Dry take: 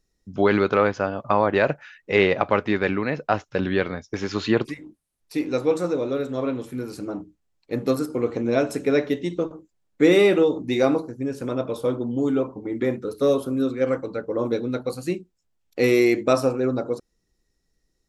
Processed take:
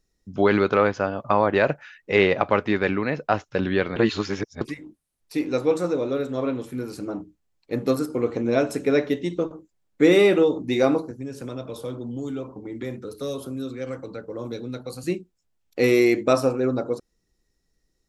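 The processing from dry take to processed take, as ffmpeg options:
-filter_complex "[0:a]asettb=1/sr,asplit=3[s0][s1][s2];[s0]atrim=end=11.114[s3];[s1]atrim=start=11.11:end=15.04,asetpts=PTS-STARTPTS,afade=t=in:d=0.004:c=qsin,afade=t=out:st=3.926:d=0.004:c=qsin,acrossover=split=130|3000[s4][s5][s6];[s5]acompressor=threshold=0.0158:ratio=2:attack=3.2:release=140:knee=2.83:detection=peak[s7];[s4][s7][s6]amix=inputs=3:normalize=0[s8];[s2]atrim=start=15.036[s9];[s3][s8]acrossfade=d=0.004:c1=hsin:c2=qsin[s10];[s10][s9]acrossfade=d=0.004:c1=qsin:c2=hsin,asplit=3[s11][s12][s13];[s11]atrim=end=3.962[s14];[s12]atrim=start=3.958:end=4.612,asetpts=PTS-STARTPTS,areverse[s15];[s13]atrim=start=4.608[s16];[s14][s15]acrossfade=d=0.004:c1=hsin:c2=hsin[s17];[s17][s16]acrossfade=d=0.004:c1=hsin:c2=hsin"

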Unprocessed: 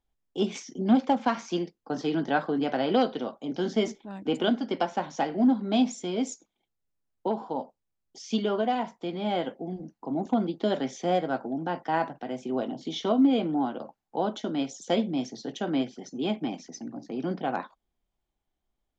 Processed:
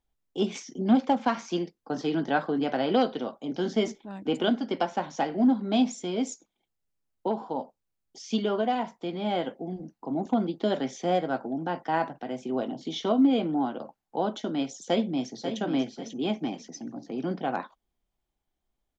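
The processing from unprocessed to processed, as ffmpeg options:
-filter_complex "[0:a]asplit=2[s0][s1];[s1]afade=t=in:st=14.85:d=0.01,afade=t=out:st=15.59:d=0.01,aecho=0:1:540|1080|1620|2160:0.375837|0.112751|0.0338254|0.0101476[s2];[s0][s2]amix=inputs=2:normalize=0"

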